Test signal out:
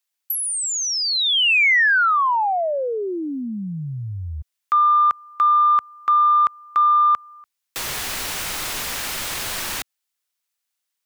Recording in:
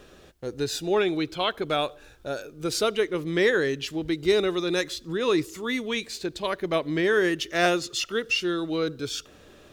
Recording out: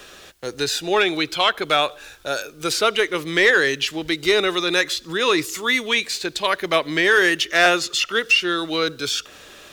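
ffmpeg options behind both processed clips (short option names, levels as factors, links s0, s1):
-filter_complex "[0:a]tiltshelf=f=690:g=-8,acrossover=split=130|960|2800[s0][s1][s2][s3];[s3]acompressor=threshold=0.0282:ratio=6[s4];[s0][s1][s2][s4]amix=inputs=4:normalize=0,asoftclip=type=tanh:threshold=0.266,volume=2.11"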